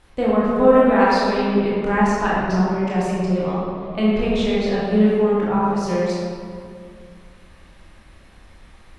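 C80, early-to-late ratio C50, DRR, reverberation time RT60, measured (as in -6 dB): -0.5 dB, -3.0 dB, -7.0 dB, 2.2 s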